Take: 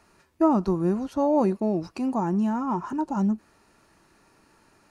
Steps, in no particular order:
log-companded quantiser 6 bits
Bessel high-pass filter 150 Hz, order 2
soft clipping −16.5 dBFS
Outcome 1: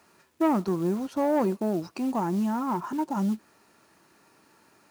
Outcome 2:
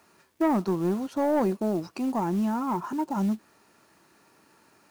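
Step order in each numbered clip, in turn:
log-companded quantiser, then soft clipping, then Bessel high-pass filter
Bessel high-pass filter, then log-companded quantiser, then soft clipping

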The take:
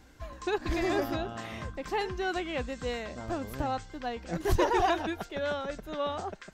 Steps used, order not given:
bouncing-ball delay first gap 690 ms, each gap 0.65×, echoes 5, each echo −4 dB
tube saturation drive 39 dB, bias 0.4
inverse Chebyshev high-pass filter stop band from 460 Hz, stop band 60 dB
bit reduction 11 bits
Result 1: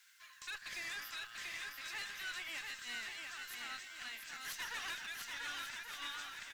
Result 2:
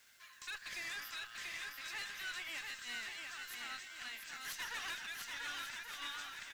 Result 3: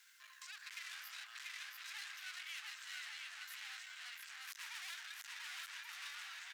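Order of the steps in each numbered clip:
bit reduction, then inverse Chebyshev high-pass filter, then tube saturation, then bouncing-ball delay
inverse Chebyshev high-pass filter, then tube saturation, then bouncing-ball delay, then bit reduction
bouncing-ball delay, then bit reduction, then tube saturation, then inverse Chebyshev high-pass filter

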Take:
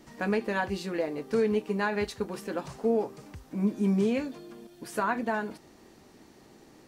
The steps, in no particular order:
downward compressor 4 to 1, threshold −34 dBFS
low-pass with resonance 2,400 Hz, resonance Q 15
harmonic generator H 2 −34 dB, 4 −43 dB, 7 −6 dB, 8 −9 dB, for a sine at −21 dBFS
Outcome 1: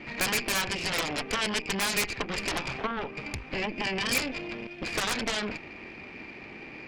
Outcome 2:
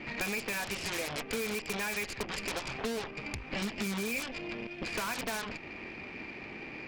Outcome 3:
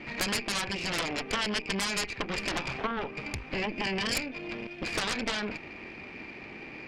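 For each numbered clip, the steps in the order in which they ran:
downward compressor, then low-pass with resonance, then harmonic generator
low-pass with resonance, then harmonic generator, then downward compressor
low-pass with resonance, then downward compressor, then harmonic generator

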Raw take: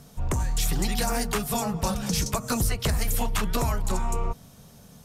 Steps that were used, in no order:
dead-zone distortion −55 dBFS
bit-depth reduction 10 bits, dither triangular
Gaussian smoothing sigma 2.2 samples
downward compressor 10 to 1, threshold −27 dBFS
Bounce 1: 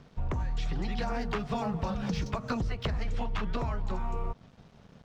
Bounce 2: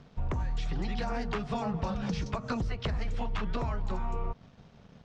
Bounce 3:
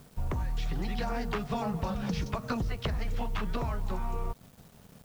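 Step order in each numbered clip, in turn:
bit-depth reduction, then Gaussian smoothing, then dead-zone distortion, then downward compressor
bit-depth reduction, then dead-zone distortion, then downward compressor, then Gaussian smoothing
Gaussian smoothing, then downward compressor, then bit-depth reduction, then dead-zone distortion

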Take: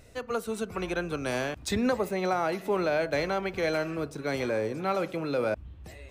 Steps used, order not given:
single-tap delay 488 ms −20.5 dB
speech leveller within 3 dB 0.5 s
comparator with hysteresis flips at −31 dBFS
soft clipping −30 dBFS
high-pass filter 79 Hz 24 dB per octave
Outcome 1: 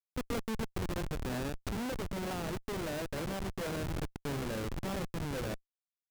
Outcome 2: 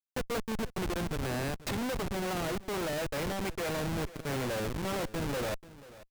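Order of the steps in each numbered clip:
single-tap delay, then soft clipping, then high-pass filter, then comparator with hysteresis, then speech leveller
high-pass filter, then comparator with hysteresis, then single-tap delay, then speech leveller, then soft clipping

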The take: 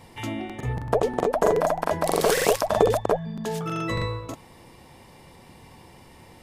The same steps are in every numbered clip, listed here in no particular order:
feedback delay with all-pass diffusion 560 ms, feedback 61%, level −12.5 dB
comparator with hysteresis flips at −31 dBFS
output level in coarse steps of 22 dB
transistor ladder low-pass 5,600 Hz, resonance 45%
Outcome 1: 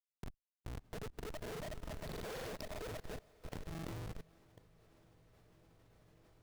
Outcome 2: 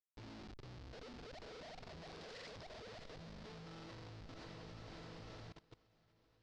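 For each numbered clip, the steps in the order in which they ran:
transistor ladder low-pass, then comparator with hysteresis, then feedback delay with all-pass diffusion, then output level in coarse steps
comparator with hysteresis, then feedback delay with all-pass diffusion, then output level in coarse steps, then transistor ladder low-pass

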